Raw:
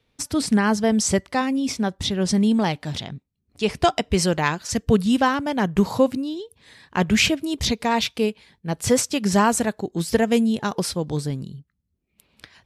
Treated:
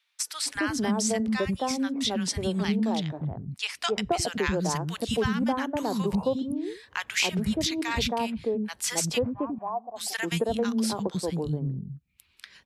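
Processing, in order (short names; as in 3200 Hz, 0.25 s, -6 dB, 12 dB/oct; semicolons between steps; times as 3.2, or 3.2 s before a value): 9.22–9.96 vocal tract filter a; three bands offset in time highs, mids, lows 0.27/0.36 s, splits 260/1100 Hz; compressor 2.5:1, threshold -25 dBFS, peak gain reduction 7.5 dB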